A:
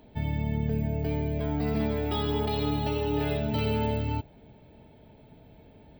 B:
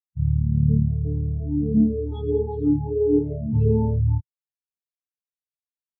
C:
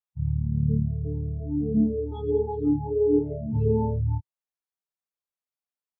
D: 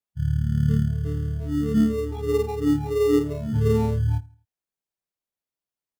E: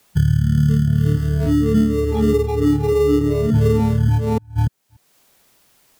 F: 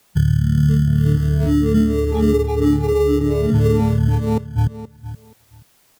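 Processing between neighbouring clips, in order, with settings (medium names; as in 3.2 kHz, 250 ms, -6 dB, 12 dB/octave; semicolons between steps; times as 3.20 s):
spectral contrast expander 4:1; trim +8 dB
peaking EQ 840 Hz +8.5 dB 2.1 oct; trim -5.5 dB
in parallel at -10 dB: sample-rate reducer 1.6 kHz, jitter 0%; on the sum: feedback delay 82 ms, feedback 40%, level -23.5 dB
chunks repeated in reverse 292 ms, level -7 dB; three bands compressed up and down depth 100%; trim +4.5 dB
feedback delay 475 ms, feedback 20%, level -14 dB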